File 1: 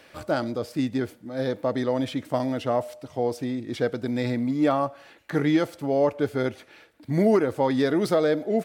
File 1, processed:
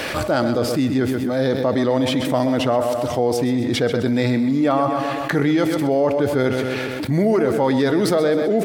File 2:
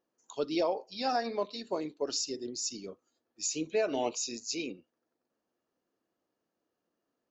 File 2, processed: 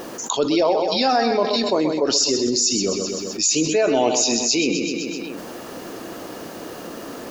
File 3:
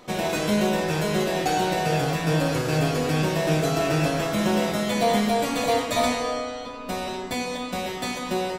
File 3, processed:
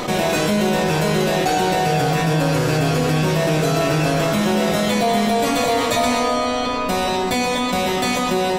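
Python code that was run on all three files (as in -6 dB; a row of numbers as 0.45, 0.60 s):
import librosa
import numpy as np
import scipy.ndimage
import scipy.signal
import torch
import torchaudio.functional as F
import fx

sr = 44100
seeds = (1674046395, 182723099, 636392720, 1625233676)

y = fx.echo_feedback(x, sr, ms=128, feedback_pct=45, wet_db=-11.5)
y = fx.env_flatten(y, sr, amount_pct=70)
y = librosa.util.normalize(y) * 10.0 ** (-6 / 20.0)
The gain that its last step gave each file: +1.0, +9.5, +2.0 dB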